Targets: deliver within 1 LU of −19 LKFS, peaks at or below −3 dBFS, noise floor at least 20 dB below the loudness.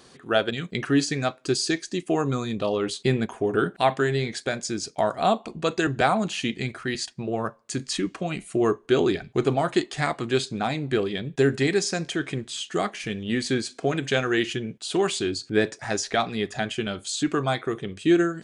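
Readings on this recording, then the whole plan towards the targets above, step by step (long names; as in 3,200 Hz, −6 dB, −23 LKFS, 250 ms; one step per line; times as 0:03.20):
integrated loudness −25.5 LKFS; sample peak −5.5 dBFS; target loudness −19.0 LKFS
→ level +6.5 dB
brickwall limiter −3 dBFS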